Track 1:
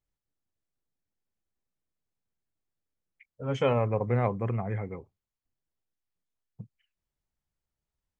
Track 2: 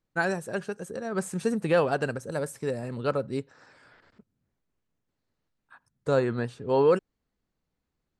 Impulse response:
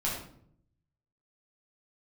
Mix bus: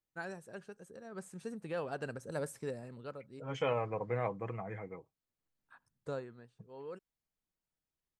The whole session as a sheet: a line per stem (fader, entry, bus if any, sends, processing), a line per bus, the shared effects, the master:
−5.5 dB, 0.00 s, no send, low-shelf EQ 270 Hz −9.5 dB; comb filter 6.3 ms, depth 43%
0:01.74 −16 dB → 0:02.39 −7 dB → 0:05.98 −7 dB → 0:06.30 −16.5 dB, 0.00 s, no send, automatic ducking −13 dB, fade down 0.65 s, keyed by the first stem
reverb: not used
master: no processing

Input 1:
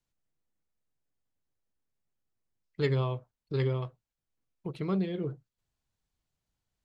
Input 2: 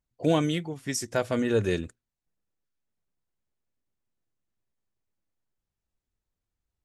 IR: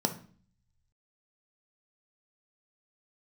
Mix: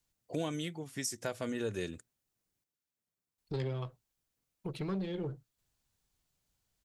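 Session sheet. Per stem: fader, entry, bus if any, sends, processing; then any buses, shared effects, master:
+2.0 dB, 0.00 s, muted 0:02.64–0:03.38, no send, one-sided soft clipper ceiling −29 dBFS
−5.0 dB, 0.10 s, no send, high-pass filter 86 Hz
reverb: not used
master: high-shelf EQ 4,200 Hz +7.5 dB; downward compressor 2 to 1, threshold −37 dBFS, peak gain reduction 8.5 dB

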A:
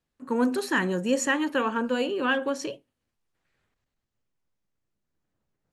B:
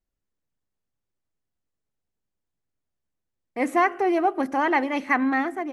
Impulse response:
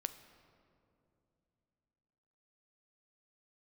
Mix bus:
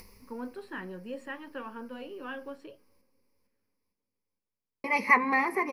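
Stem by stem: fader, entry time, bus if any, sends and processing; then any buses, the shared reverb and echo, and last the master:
−11.0 dB, 0.00 s, send −15.5 dB, no echo send, moving average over 7 samples
0.0 dB, 0.00 s, muted 0:02.56–0:04.84, send −15 dB, echo send −17 dB, EQ curve with evenly spaced ripples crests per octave 0.86, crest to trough 18 dB; upward compression, threshold −18 dBFS; automatic ducking −18 dB, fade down 0.80 s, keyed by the first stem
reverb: on, RT60 2.8 s, pre-delay 7 ms
echo: repeating echo 456 ms, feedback 47%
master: low-shelf EQ 80 Hz −9 dB; flanger 0.63 Hz, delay 7.5 ms, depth 3.5 ms, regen −57%

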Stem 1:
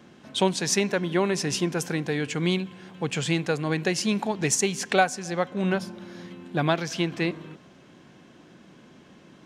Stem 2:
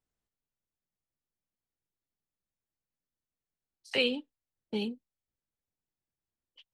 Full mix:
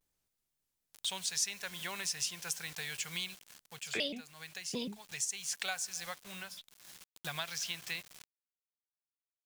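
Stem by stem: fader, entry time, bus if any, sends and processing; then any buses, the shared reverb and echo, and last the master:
+1.5 dB, 0.70 s, no send, guitar amp tone stack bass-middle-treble 10-0-10; bit reduction 8 bits; automatic ducking −13 dB, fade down 0.50 s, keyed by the second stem
+2.5 dB, 0.00 s, no send, pitch modulation by a square or saw wave square 4 Hz, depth 250 cents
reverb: not used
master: high-shelf EQ 3,600 Hz +8.5 dB; downward compressor 2 to 1, threshold −42 dBFS, peak gain reduction 15.5 dB

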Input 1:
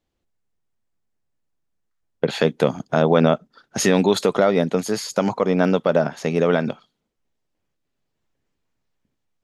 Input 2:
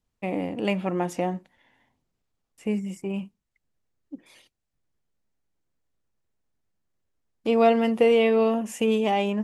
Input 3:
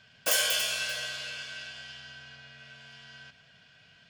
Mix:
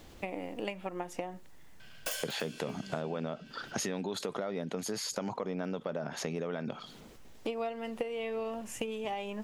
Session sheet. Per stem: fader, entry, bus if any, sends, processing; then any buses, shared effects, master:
−7.0 dB, 0.00 s, no send, envelope flattener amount 50%
−5.0 dB, 0.00 s, no send, high-pass filter 430 Hz 6 dB per octave; transient designer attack +7 dB, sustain 0 dB
+2.0 dB, 1.80 s, no send, automatic ducking −12 dB, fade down 0.25 s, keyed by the first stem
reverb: not used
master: downward compressor 6 to 1, threshold −33 dBFS, peak gain reduction 16 dB

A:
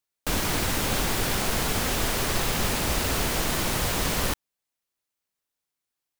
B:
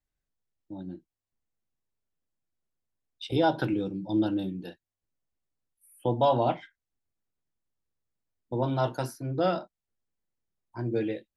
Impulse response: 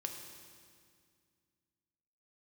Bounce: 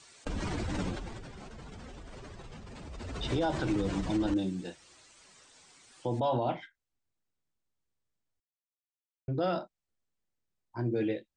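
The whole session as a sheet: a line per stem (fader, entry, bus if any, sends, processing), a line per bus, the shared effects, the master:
0:00.80 −8 dB → 0:01.30 −20.5 dB → 0:02.78 −20.5 dB → 0:03.26 −10 dB, 0.00 s, send −18.5 dB, expanding power law on the bin magnitudes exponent 1.9; high-pass filter 53 Hz 6 dB per octave; envelope flattener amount 100%
0.0 dB, 0.00 s, muted 0:08.40–0:09.28, no send, no processing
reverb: on, RT60 2.1 s, pre-delay 3 ms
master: Butterworth low-pass 8,900 Hz 96 dB per octave; brickwall limiter −21.5 dBFS, peak gain reduction 8 dB

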